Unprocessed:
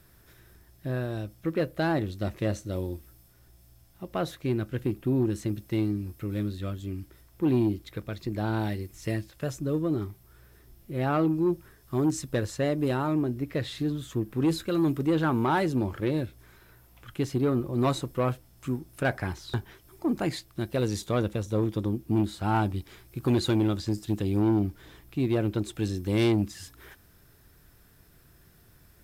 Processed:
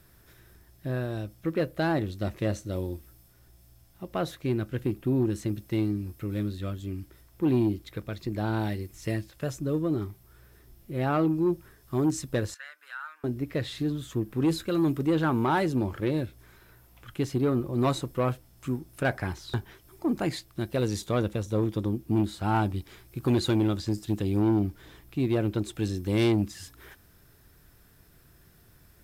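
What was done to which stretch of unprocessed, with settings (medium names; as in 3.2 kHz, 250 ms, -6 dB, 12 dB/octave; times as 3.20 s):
12.54–13.24 s: ladder high-pass 1.4 kHz, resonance 75%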